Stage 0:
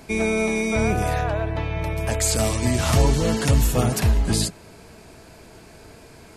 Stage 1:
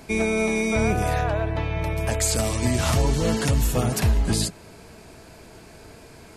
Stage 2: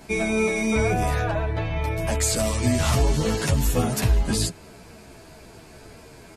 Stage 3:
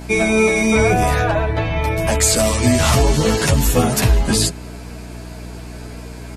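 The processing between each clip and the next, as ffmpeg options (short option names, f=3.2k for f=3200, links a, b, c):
-af "alimiter=limit=-11.5dB:level=0:latency=1:release=250"
-filter_complex "[0:a]asplit=2[a][b];[b]adelay=10.7,afreqshift=-2.8[c];[a][c]amix=inputs=2:normalize=1,volume=3dB"
-af "aeval=exprs='val(0)+0.0141*(sin(2*PI*60*n/s)+sin(2*PI*2*60*n/s)/2+sin(2*PI*3*60*n/s)/3+sin(2*PI*4*60*n/s)/4+sin(2*PI*5*60*n/s)/5)':c=same,lowshelf=f=180:g=-4,volume=8.5dB"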